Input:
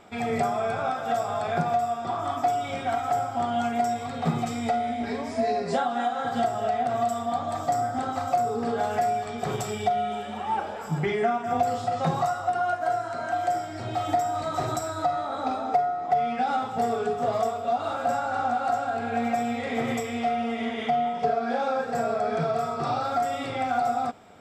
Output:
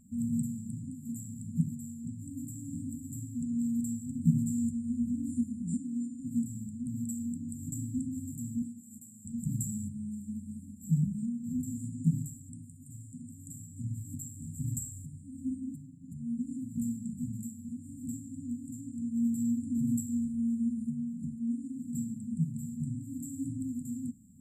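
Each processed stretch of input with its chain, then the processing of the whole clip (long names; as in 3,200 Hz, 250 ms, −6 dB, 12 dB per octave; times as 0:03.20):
0:08.62–0:09.25: high-pass filter 660 Hz 6 dB per octave + downward compressor 5 to 1, threshold −29 dBFS
whole clip: mains-hum notches 50/100 Hz; brick-wall band-stop 290–7,000 Hz; level +1.5 dB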